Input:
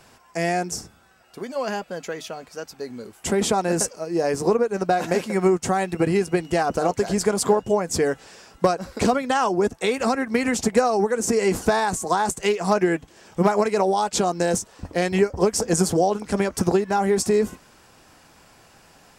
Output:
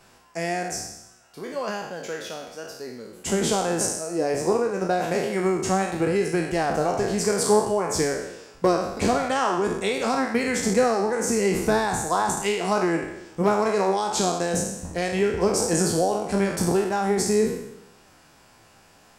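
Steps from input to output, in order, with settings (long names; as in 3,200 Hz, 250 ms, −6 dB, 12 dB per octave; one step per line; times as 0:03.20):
peak hold with a decay on every bin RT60 0.89 s
flanger 0.61 Hz, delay 4.8 ms, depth 6 ms, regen +75%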